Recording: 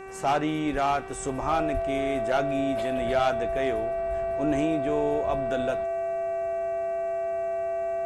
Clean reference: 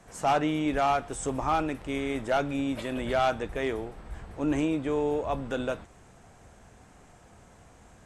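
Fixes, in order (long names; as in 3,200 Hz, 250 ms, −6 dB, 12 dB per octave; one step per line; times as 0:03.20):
hum removal 384.9 Hz, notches 7
notch filter 670 Hz, Q 30
0:01.73–0:01.85: high-pass filter 140 Hz 24 dB per octave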